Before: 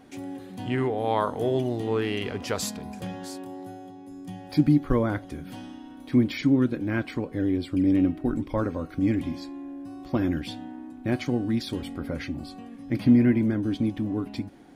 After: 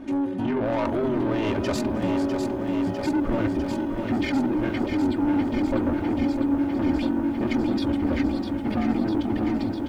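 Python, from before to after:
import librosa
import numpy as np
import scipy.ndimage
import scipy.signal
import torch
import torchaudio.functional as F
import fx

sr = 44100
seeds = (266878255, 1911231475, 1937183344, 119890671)

p1 = fx.lowpass(x, sr, hz=1100.0, slope=6)
p2 = p1 + 0.87 * np.pad(p1, (int(3.3 * sr / 1000.0), 0))[:len(p1)]
p3 = fx.over_compress(p2, sr, threshold_db=-29.0, ratio=-1.0)
p4 = p2 + F.gain(torch.from_numpy(p3), 2.5).numpy()
p5 = 10.0 ** (-20.0 / 20.0) * np.tanh(p4 / 10.0 ** (-20.0 / 20.0))
p6 = fx.stretch_grains(p5, sr, factor=0.67, grain_ms=44.0)
p7 = p6 + fx.echo_single(p6, sr, ms=306, db=-23.0, dry=0)
y = fx.echo_crushed(p7, sr, ms=651, feedback_pct=80, bits=10, wet_db=-7.0)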